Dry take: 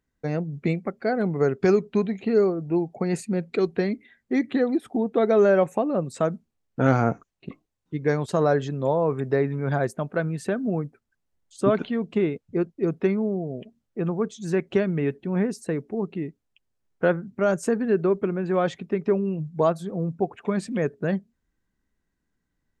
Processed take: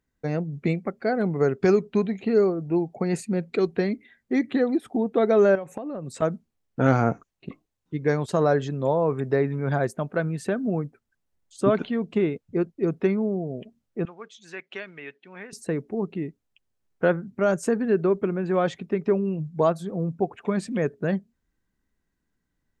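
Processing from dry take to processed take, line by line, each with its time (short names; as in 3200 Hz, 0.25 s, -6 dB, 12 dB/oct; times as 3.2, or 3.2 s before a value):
5.55–6.22 compressor 16:1, threshold -28 dBFS
14.05–15.53 band-pass 2600 Hz, Q 1.1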